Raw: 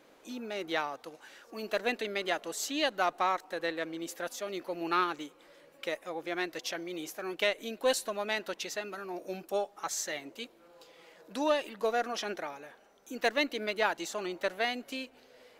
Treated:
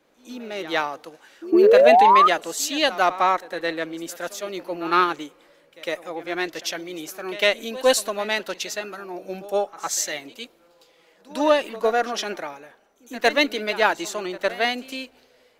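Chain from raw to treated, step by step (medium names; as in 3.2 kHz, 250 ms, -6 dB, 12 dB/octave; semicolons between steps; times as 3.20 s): painted sound rise, 1.52–2.28 s, 320–1300 Hz -24 dBFS; pre-echo 106 ms -14 dB; three bands expanded up and down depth 40%; trim +8.5 dB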